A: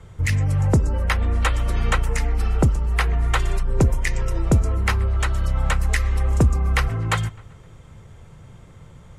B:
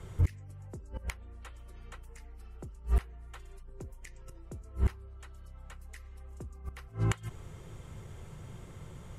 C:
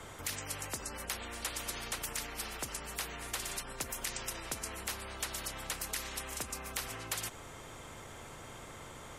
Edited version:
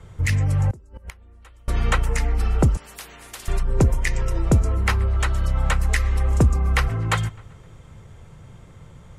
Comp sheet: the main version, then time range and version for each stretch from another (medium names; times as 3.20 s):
A
0.71–1.68 s: from B
2.77–3.48 s: from C